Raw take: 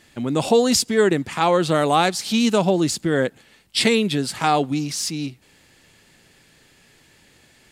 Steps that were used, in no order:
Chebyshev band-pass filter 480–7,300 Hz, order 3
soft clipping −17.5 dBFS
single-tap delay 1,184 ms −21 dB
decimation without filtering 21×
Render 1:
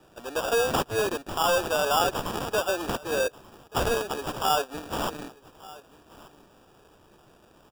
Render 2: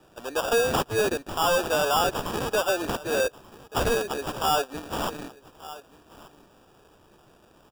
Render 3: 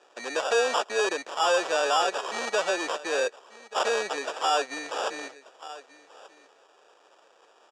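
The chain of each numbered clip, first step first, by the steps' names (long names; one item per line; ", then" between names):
soft clipping, then Chebyshev band-pass filter, then decimation without filtering, then single-tap delay
Chebyshev band-pass filter, then decimation without filtering, then single-tap delay, then soft clipping
decimation without filtering, then single-tap delay, then soft clipping, then Chebyshev band-pass filter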